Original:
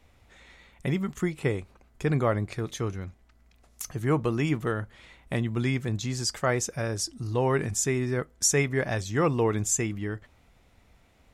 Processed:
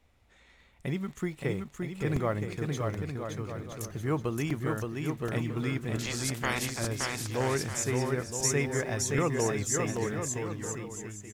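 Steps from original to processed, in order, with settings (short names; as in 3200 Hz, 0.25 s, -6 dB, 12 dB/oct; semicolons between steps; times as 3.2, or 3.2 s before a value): 5.93–6.78 spectral limiter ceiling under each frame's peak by 28 dB; in parallel at -12 dB: bit-crush 7-bit; on the sum: bouncing-ball echo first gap 0.57 s, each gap 0.7×, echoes 5; crackling interface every 0.78 s, samples 128, repeat, from 0.6; gain -7 dB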